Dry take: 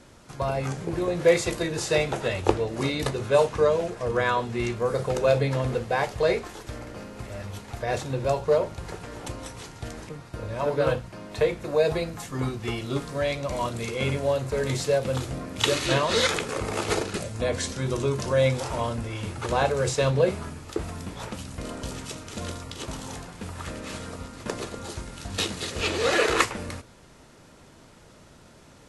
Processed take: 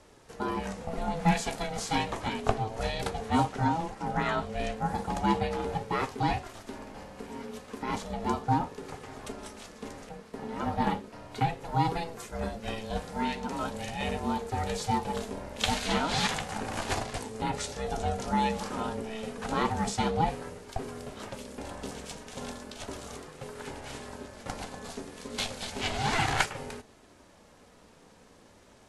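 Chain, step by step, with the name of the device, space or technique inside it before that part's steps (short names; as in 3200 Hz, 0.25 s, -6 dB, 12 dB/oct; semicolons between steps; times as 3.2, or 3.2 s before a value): alien voice (ring modulator 330 Hz; flange 0.34 Hz, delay 2.1 ms, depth 2.3 ms, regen -60%); gain +2 dB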